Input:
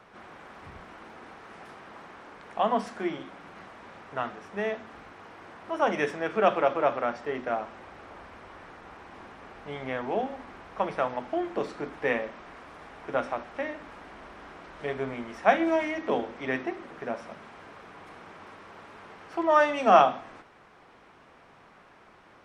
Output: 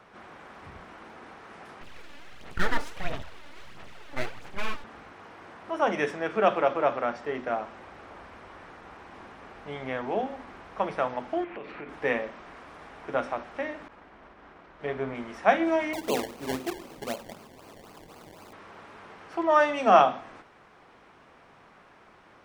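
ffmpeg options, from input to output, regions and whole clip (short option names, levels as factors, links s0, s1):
-filter_complex "[0:a]asettb=1/sr,asplit=3[s0][s1][s2];[s0]atrim=end=1.814[s3];[s1]atrim=start=1.81:end=4.84,asetpts=PTS-STARTPTS,afade=t=in:d=0.004:c=qsin,afade=t=out:st=3.026:d=0.004:c=qsin,aeval=exprs='abs(val(0))':c=same,aphaser=in_gain=1:out_gain=1:delay=3.5:decay=0.55:speed=1.5:type=sinusoidal[s4];[s2]atrim=start=4.836[s5];[s3][s4]acrossfade=d=0.004:c1=hsin:c2=qsin[s6];[s6][s5]acrossfade=d=0.004:c1=qsin:c2=hsin,asettb=1/sr,asplit=3[s7][s8][s9];[s7]atrim=end=11.444[s10];[s8]atrim=start=11.44:end=11.89,asetpts=PTS-STARTPTS,afade=t=in:d=0.004:c=qsin,afade=t=out:st=0.446:d=0.004:c=qsin,lowpass=f=2500:t=q:w=3.2,acompressor=threshold=0.0141:ratio=4:attack=3.2:release=140:knee=1:detection=peak[s11];[s9]atrim=start=11.886[s12];[s10][s11]acrossfade=d=0.004:c1=hsin:c2=qsin[s13];[s13][s12]acrossfade=d=0.004:c1=qsin:c2=hsin,asettb=1/sr,asplit=3[s14][s15][s16];[s14]atrim=end=13.884[s17];[s15]atrim=start=13.88:end=15.15,asetpts=PTS-STARTPTS,afade=t=in:d=0.004:c=qsin,afade=t=out:st=1.266:d=0.004:c=qsin,agate=range=0.0224:threshold=0.00794:ratio=3:release=100:detection=peak,aemphasis=mode=reproduction:type=50fm[s18];[s16]atrim=start=15.146[s19];[s17][s18]acrossfade=d=0.004:c1=hsin:c2=qsin[s20];[s20][s19]acrossfade=d=0.004:c1=qsin:c2=hsin,asettb=1/sr,asplit=3[s21][s22][s23];[s21]atrim=end=15.934[s24];[s22]atrim=start=15.93:end=18.53,asetpts=PTS-STARTPTS,afade=t=in:d=0.004:c=qsin,afade=t=out:st=2.596:d=0.004:c=qsin,equalizer=f=1800:t=o:w=0.56:g=-14,acrusher=samples=24:mix=1:aa=0.000001:lfo=1:lforange=24:lforate=3.9[s25];[s23]atrim=start=18.526[s26];[s24][s25]acrossfade=d=0.004:c1=hsin:c2=qsin[s27];[s27][s26]acrossfade=d=0.004:c1=qsin:c2=hsin"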